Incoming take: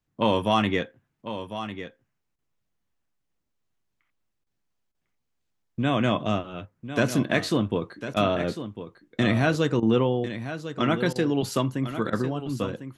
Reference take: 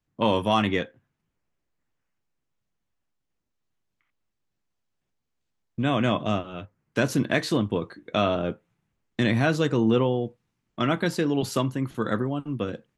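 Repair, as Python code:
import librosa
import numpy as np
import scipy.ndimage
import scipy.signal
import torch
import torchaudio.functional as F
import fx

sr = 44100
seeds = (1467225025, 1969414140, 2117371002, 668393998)

y = fx.fix_interpolate(x, sr, at_s=(2.36, 4.44, 4.92, 8.14, 9.8, 11.13, 12.1), length_ms=25.0)
y = fx.fix_echo_inverse(y, sr, delay_ms=1050, level_db=-11.0)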